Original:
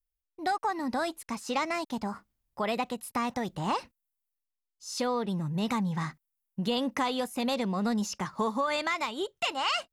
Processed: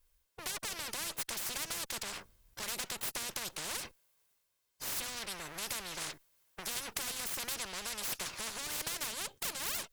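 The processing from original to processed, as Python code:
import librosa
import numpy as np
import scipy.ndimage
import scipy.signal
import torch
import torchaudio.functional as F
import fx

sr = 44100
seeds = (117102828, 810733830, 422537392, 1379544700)

y = fx.lower_of_two(x, sr, delay_ms=1.9)
y = fx.spectral_comp(y, sr, ratio=10.0)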